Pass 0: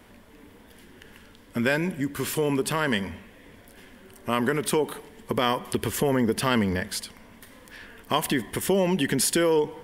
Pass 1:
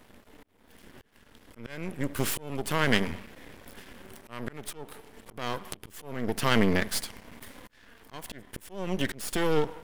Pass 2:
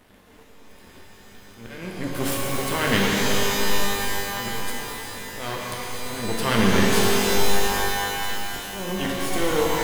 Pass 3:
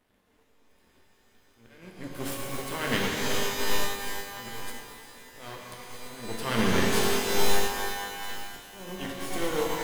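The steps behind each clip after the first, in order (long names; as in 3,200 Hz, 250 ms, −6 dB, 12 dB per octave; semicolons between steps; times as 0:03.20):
automatic gain control gain up to 6 dB; volume swells 655 ms; half-wave rectification
reverb with rising layers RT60 3.6 s, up +12 semitones, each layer −2 dB, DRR −3 dB
mains-hum notches 50/100/150/200 Hz; expander for the loud parts 1.5 to 1, over −38 dBFS; level −2.5 dB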